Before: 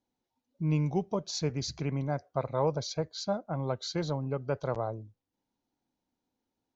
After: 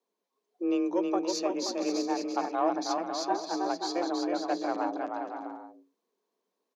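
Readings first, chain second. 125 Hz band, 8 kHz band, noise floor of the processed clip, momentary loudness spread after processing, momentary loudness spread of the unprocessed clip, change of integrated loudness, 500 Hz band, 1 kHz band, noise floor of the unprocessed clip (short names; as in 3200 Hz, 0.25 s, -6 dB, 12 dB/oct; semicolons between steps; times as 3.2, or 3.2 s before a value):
under -25 dB, n/a, -84 dBFS, 7 LU, 5 LU, +2.0 dB, +1.5 dB, +7.5 dB, under -85 dBFS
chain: added harmonics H 4 -25 dB, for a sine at -16 dBFS; frequency shift +170 Hz; bouncing-ball echo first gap 0.32 s, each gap 0.65×, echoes 5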